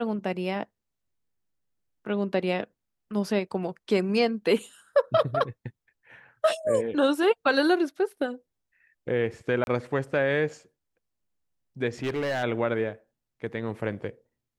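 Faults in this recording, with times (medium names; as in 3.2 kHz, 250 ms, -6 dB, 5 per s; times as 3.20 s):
9.64–9.67 s: dropout 31 ms
12.03–12.44 s: clipped -24.5 dBFS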